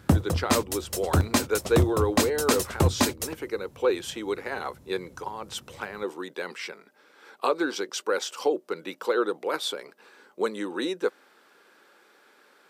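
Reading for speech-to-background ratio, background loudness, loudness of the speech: −3.5 dB, −26.5 LKFS, −30.0 LKFS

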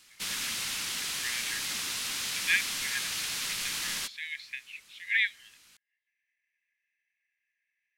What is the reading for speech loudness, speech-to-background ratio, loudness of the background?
−33.0 LKFS, −1.5 dB, −31.5 LKFS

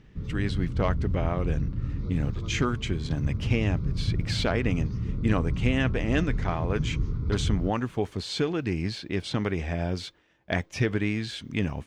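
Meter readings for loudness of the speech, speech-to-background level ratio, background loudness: −29.5 LKFS, 2.0 dB, −31.5 LKFS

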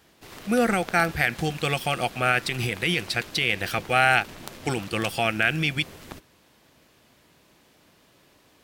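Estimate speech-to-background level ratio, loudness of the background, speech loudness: 17.5 dB, −41.5 LKFS, −24.0 LKFS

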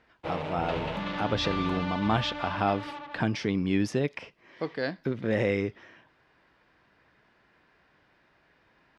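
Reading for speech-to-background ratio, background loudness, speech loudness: 5.0 dB, −35.0 LKFS, −30.0 LKFS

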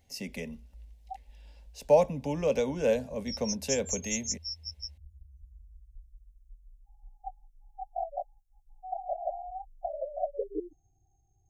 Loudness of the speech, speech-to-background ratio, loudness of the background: −30.0 LKFS, 7.0 dB, −37.0 LKFS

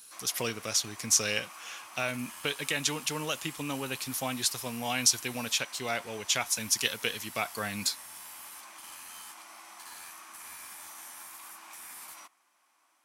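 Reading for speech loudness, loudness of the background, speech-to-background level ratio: −30.0 LKFS, −44.5 LKFS, 14.5 dB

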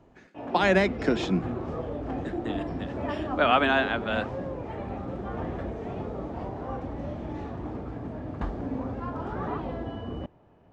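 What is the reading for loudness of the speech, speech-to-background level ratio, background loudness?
−25.5 LKFS, 9.0 dB, −34.5 LKFS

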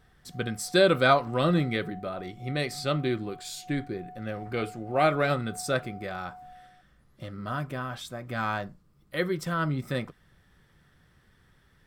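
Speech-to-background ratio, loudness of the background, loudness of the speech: 19.5 dB, −48.5 LKFS, −29.0 LKFS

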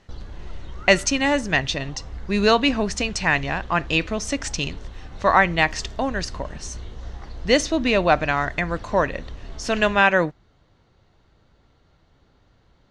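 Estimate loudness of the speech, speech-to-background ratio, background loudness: −21.5 LKFS, 18.0 dB, −39.5 LKFS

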